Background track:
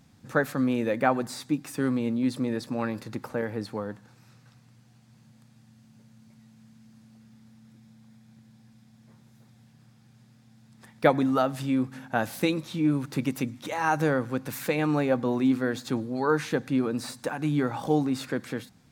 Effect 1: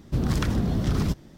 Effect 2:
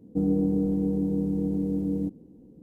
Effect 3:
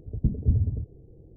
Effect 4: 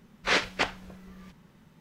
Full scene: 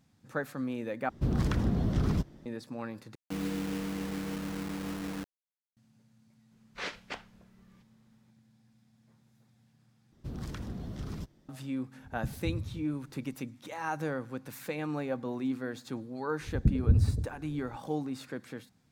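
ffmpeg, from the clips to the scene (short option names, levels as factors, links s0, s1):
-filter_complex "[1:a]asplit=2[s0][s1];[3:a]asplit=2[s2][s3];[0:a]volume=0.335[s4];[s0]highshelf=f=2700:g=-7[s5];[2:a]acrusher=bits=4:mix=0:aa=0.000001[s6];[s2]equalizer=f=140:t=o:w=0.77:g=7.5[s7];[s4]asplit=4[s8][s9][s10][s11];[s8]atrim=end=1.094[s12];[s5]atrim=end=1.37,asetpts=PTS-STARTPTS,volume=0.631[s13];[s9]atrim=start=2.456:end=3.154[s14];[s6]atrim=end=2.62,asetpts=PTS-STARTPTS,volume=0.299[s15];[s10]atrim=start=5.766:end=10.124[s16];[s1]atrim=end=1.37,asetpts=PTS-STARTPTS,volume=0.178[s17];[s11]atrim=start=11.486[s18];[4:a]atrim=end=1.8,asetpts=PTS-STARTPTS,volume=0.211,afade=t=in:d=0.004:c=hsin,afade=t=out:st=1.796:d=0.004:c=hsin,adelay=6510[s19];[s7]atrim=end=1.36,asetpts=PTS-STARTPTS,volume=0.168,afade=t=in:d=0.004:c=hsin,afade=t=out:st=1.356:d=0.004:c=hsin,adelay=11990[s20];[s3]atrim=end=1.36,asetpts=PTS-STARTPTS,volume=0.891,afade=t=in:d=0.004:c=hsin,afade=t=out:st=1.356:d=0.004:c=hsin,adelay=16410[s21];[s12][s13]acrossfade=d=0.004:c1=hsin:c2=hsin[s22];[s22][s14]acrossfade=d=0.004:c1=hsin:c2=hsin[s23];[s23][s15]acrossfade=d=0.004:c1=hsin:c2=hsin[s24];[s24][s16]acrossfade=d=0.004:c1=hsin:c2=hsin[s25];[s25][s17]acrossfade=d=0.004:c1=hsin:c2=hsin[s26];[s26][s18]acrossfade=d=0.004:c1=hsin:c2=hsin[s27];[s27][s19][s20][s21]amix=inputs=4:normalize=0"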